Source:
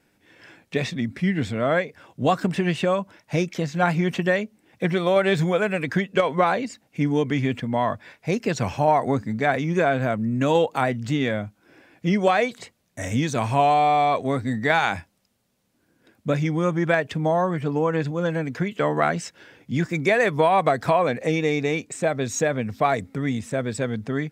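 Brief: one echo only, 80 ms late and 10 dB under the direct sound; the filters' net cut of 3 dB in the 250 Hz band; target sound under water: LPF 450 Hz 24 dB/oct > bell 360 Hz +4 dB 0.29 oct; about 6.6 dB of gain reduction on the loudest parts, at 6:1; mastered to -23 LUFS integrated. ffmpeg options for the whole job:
-af "equalizer=f=250:t=o:g=-5.5,acompressor=threshold=-22dB:ratio=6,lowpass=f=450:w=0.5412,lowpass=f=450:w=1.3066,equalizer=f=360:t=o:w=0.29:g=4,aecho=1:1:80:0.316,volume=8dB"

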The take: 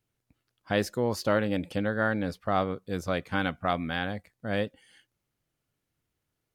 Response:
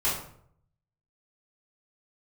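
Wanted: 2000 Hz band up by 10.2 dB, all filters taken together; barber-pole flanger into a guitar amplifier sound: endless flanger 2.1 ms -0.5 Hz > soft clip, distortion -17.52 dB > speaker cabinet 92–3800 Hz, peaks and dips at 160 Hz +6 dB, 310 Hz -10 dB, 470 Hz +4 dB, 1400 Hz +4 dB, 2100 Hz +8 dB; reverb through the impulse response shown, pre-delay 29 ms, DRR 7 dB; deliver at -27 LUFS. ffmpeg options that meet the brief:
-filter_complex "[0:a]equalizer=f=2k:t=o:g=8,asplit=2[a][b];[1:a]atrim=start_sample=2205,adelay=29[c];[b][c]afir=irnorm=-1:irlink=0,volume=-17.5dB[d];[a][d]amix=inputs=2:normalize=0,asplit=2[e][f];[f]adelay=2.1,afreqshift=-0.5[g];[e][g]amix=inputs=2:normalize=1,asoftclip=threshold=-19.5dB,highpass=92,equalizer=f=160:t=q:w=4:g=6,equalizer=f=310:t=q:w=4:g=-10,equalizer=f=470:t=q:w=4:g=4,equalizer=f=1.4k:t=q:w=4:g=4,equalizer=f=2.1k:t=q:w=4:g=8,lowpass=f=3.8k:w=0.5412,lowpass=f=3.8k:w=1.3066,volume=2dB"

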